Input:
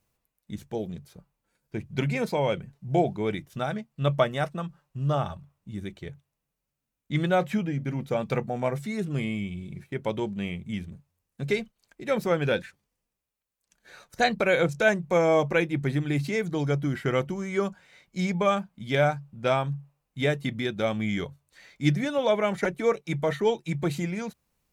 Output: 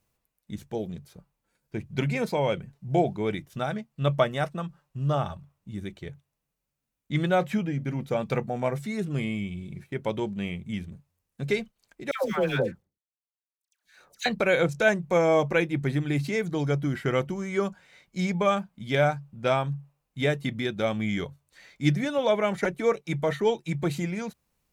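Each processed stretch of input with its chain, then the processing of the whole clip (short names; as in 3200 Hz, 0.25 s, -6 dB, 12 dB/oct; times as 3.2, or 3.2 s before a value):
12.11–14.26 G.711 law mismatch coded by A + dispersion lows, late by 0.136 s, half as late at 930 Hz
whole clip: dry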